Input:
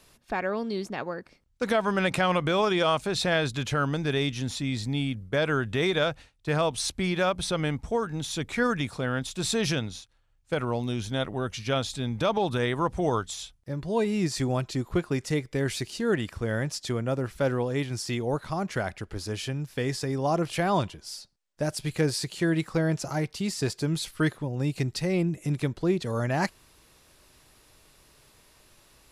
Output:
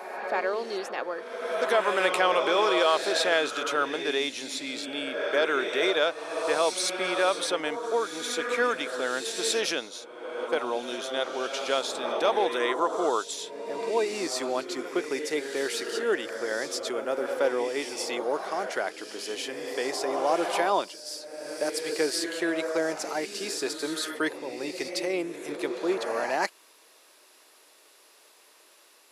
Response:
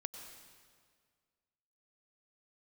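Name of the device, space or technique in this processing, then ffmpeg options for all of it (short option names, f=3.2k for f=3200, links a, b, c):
ghost voice: -filter_complex "[0:a]areverse[a];[1:a]atrim=start_sample=2205[b];[a][b]afir=irnorm=-1:irlink=0,areverse,highpass=f=350:w=0.5412,highpass=f=350:w=1.3066,volume=4.5dB"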